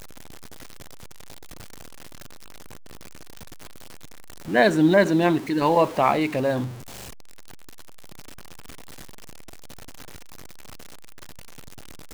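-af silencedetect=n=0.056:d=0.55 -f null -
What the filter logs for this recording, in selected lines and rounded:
silence_start: 0.00
silence_end: 4.49 | silence_duration: 4.49
silence_start: 6.65
silence_end: 12.14 | silence_duration: 5.48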